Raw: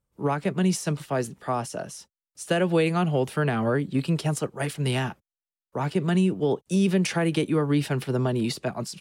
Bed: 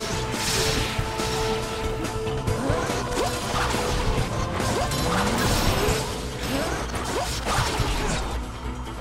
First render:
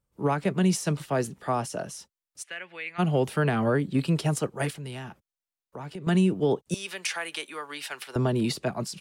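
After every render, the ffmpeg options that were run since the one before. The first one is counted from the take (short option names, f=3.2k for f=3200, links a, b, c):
-filter_complex "[0:a]asplit=3[a][b][c];[a]afade=t=out:st=2.42:d=0.02[d];[b]bandpass=f=2.1k:t=q:w=3.7,afade=t=in:st=2.42:d=0.02,afade=t=out:st=2.98:d=0.02[e];[c]afade=t=in:st=2.98:d=0.02[f];[d][e][f]amix=inputs=3:normalize=0,asettb=1/sr,asplit=3[g][h][i];[g]atrim=end=4.704[j];[h]atrim=start=4.7:end=6.07,asetpts=PTS-STARTPTS,afade=t=in:d=0.004:c=qsin,afade=t=out:st=1.366:d=0.004:c=qsin,acompressor=threshold=-40dB:ratio=2.5:attack=3.2:release=140:knee=1:detection=peak[k];[i]atrim=start=6.066[l];[j][k]acrossfade=d=0.004:c1=hsin:c2=qsin[m];[m][l]acrossfade=d=0.004:c1=qsin:c2=hsin,asettb=1/sr,asplit=3[n][o][p];[n]atrim=end=6.744[q];[o]atrim=start=6.74:end=8.16,asetpts=PTS-STARTPTS,afade=t=in:d=0.004:c=qsin,afade=t=out:st=1.416:d=0.004:c=qsin,highpass=1.1k[r];[p]atrim=start=8.156[s];[q][r]acrossfade=d=0.004:c1=hsin:c2=qsin[t];[t][s]acrossfade=d=0.004:c1=qsin:c2=hsin"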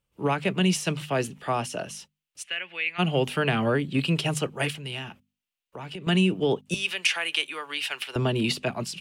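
-af "equalizer=f=2.8k:w=1.9:g=12,bandreject=f=50:t=h:w=6,bandreject=f=100:t=h:w=6,bandreject=f=150:t=h:w=6,bandreject=f=200:t=h:w=6,bandreject=f=250:t=h:w=6"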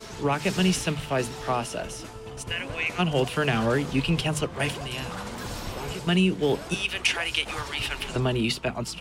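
-filter_complex "[1:a]volume=-12.5dB[a];[0:a][a]amix=inputs=2:normalize=0"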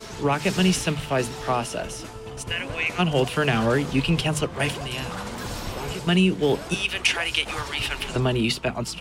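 -af "volume=2.5dB"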